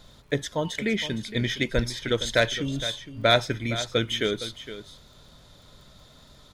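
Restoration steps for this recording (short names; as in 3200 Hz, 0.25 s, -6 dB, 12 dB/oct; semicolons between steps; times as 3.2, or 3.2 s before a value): de-click; inverse comb 0.463 s -13 dB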